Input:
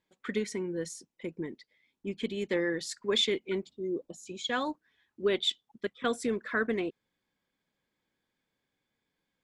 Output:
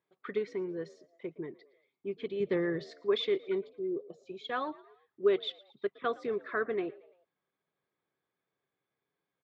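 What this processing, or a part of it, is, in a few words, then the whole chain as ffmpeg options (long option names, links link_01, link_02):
frequency-shifting delay pedal into a guitar cabinet: -filter_complex "[0:a]asettb=1/sr,asplit=3[link_01][link_02][link_03];[link_01]atrim=end=2.404[link_04];[link_02]atrim=start=2.4:end=2.84,asetpts=PTS-STARTPTS,afade=type=in:duration=0.004:curve=qsin,afade=type=out:start_time=0.436:duration=0.004:curve=qsin,bass=frequency=250:gain=12,treble=frequency=4000:gain=3[link_05];[link_03]atrim=start=2.836[link_06];[link_04][link_05]acrossfade=duration=0.004:curve1=hsin:curve2=qsin[link_07];[link_07][link_06]acrossfade=duration=0.004:curve1=qsin:curve2=hsin,asplit=4[link_08][link_09][link_10][link_11];[link_09]adelay=114,afreqshift=59,volume=-22dB[link_12];[link_10]adelay=228,afreqshift=118,volume=-28.2dB[link_13];[link_11]adelay=342,afreqshift=177,volume=-34.4dB[link_14];[link_08][link_12][link_13][link_14]amix=inputs=4:normalize=0,highpass=93,equalizer=frequency=140:width_type=q:width=4:gain=5,equalizer=frequency=230:width_type=q:width=4:gain=-6,equalizer=frequency=400:width_type=q:width=4:gain=9,equalizer=frequency=680:width_type=q:width=4:gain=7,equalizer=frequency=1200:width_type=q:width=4:gain=9,equalizer=frequency=3100:width_type=q:width=4:gain=-3,lowpass=frequency=4100:width=0.5412,lowpass=frequency=4100:width=1.3066,volume=-6.5dB"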